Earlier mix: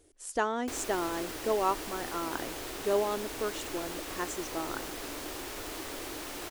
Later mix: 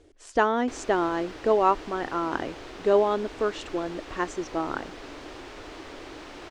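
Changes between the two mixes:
speech +8.0 dB; master: add air absorption 140 m

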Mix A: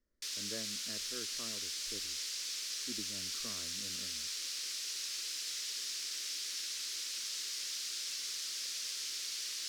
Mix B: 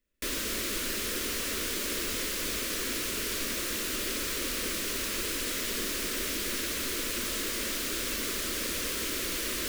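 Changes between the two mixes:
speech: remove polynomial smoothing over 41 samples; background: remove band-pass 5200 Hz, Q 2.1

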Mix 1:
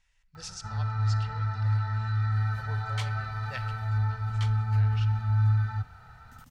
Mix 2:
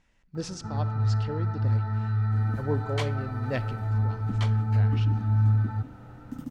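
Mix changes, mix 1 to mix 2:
speech: send -6.0 dB; first sound -10.5 dB; master: remove passive tone stack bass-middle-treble 10-0-10

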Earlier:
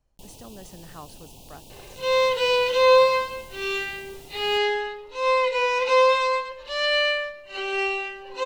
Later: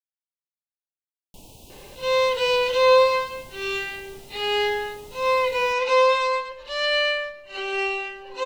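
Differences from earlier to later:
speech: muted; first sound: entry +1.15 s

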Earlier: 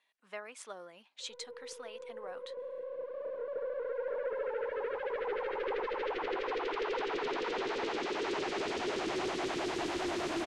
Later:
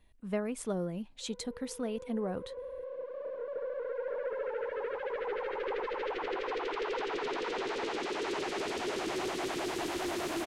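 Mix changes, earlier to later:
speech: remove HPF 1000 Hz 12 dB/oct; master: remove LPF 6700 Hz 12 dB/oct

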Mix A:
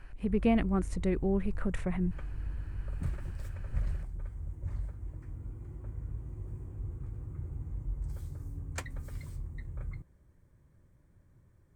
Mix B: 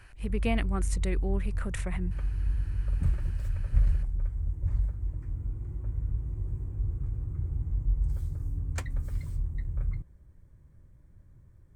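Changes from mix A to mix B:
speech: add tilt +3.5 dB/oct; master: add low shelf 120 Hz +11 dB

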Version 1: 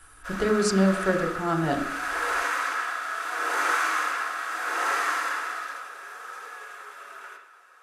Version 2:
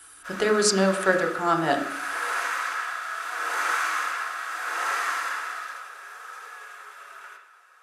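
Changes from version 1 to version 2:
speech +7.5 dB; master: add HPF 710 Hz 6 dB/oct

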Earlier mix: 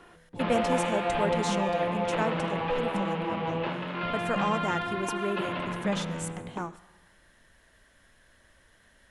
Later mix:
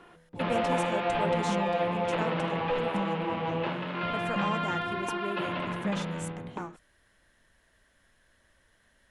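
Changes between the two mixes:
speech -4.0 dB; reverb: off

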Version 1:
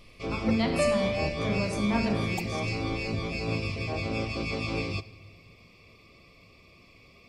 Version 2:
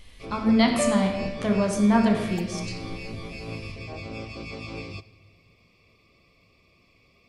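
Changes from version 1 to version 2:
speech +8.5 dB; first sound -5.5 dB

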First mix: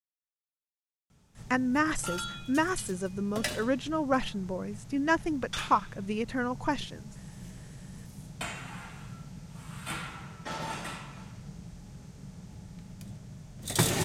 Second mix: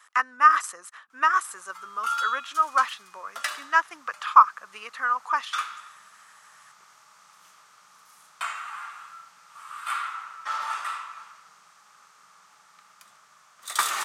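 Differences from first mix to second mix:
speech: entry -1.35 s; master: add resonant high-pass 1200 Hz, resonance Q 7.2

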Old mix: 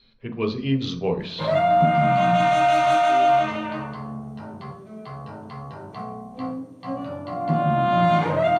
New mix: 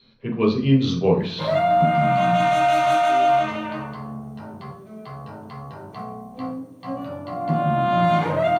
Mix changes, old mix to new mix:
speech: send +7.5 dB; master: remove LPF 9500 Hz 12 dB/oct

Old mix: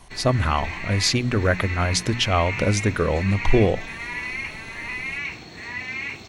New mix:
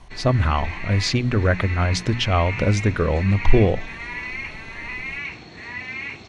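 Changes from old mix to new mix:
speech: add low shelf 120 Hz +5.5 dB; master: add air absorption 81 m

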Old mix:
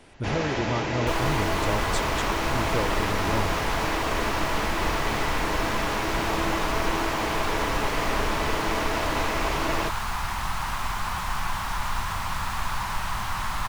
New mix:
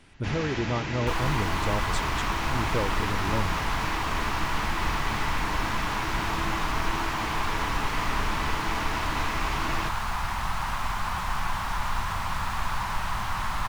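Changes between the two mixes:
first sound: add bell 550 Hz -11 dB 1.6 oct; master: add high shelf 4400 Hz -5 dB

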